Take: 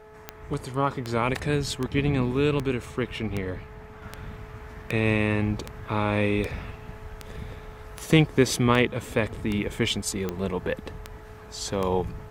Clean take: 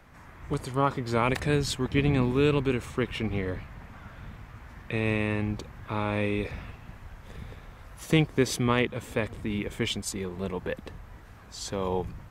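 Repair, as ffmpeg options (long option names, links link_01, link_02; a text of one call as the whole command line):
ffmpeg -i in.wav -af "adeclick=threshold=4,bandreject=frequency=429.9:width_type=h:width=4,bandreject=frequency=859.8:width_type=h:width=4,bandreject=frequency=1289.7:width_type=h:width=4,bandreject=frequency=1719.6:width_type=h:width=4,bandreject=frequency=660:width=30,asetnsamples=nb_out_samples=441:pad=0,asendcmd='4.02 volume volume -4dB',volume=0dB" out.wav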